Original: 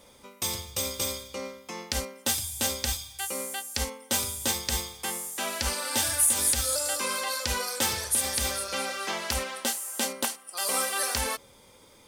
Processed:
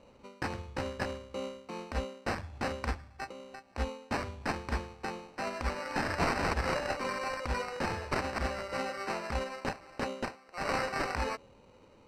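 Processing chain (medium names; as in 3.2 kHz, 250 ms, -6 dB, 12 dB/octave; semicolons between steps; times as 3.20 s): local Wiener filter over 15 samples; 3.26–3.78 s: compression 6:1, threshold -44 dBFS, peak gain reduction 16.5 dB; peak limiter -18.5 dBFS, peak gain reduction 7 dB; sample-rate reducer 3.4 kHz, jitter 0%; distance through air 78 m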